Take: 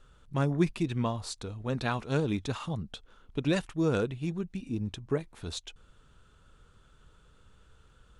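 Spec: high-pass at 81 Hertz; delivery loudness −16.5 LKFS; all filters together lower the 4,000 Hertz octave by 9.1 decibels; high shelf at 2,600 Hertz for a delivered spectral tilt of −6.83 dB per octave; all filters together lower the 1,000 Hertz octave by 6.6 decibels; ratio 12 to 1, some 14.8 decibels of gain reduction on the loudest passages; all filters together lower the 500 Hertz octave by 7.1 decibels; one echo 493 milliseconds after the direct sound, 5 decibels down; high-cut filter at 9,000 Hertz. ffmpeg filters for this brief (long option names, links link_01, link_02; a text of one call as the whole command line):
ffmpeg -i in.wav -af "highpass=81,lowpass=9000,equalizer=frequency=500:width_type=o:gain=-8,equalizer=frequency=1000:width_type=o:gain=-4.5,highshelf=frequency=2600:gain=-8,equalizer=frequency=4000:width_type=o:gain=-4,acompressor=threshold=-37dB:ratio=12,aecho=1:1:493:0.562,volume=26.5dB" out.wav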